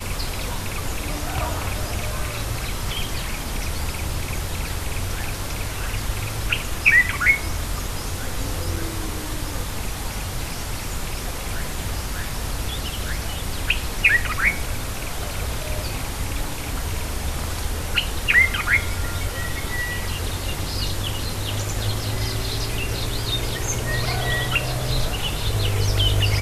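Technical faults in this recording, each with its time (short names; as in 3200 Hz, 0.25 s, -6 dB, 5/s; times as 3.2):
8.76 gap 3.7 ms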